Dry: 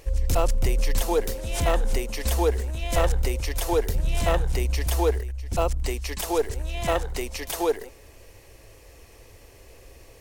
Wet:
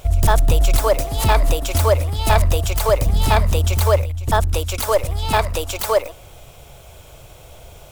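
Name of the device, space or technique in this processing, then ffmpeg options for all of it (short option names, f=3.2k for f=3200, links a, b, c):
nightcore: -af "asetrate=56889,aresample=44100,volume=7dB"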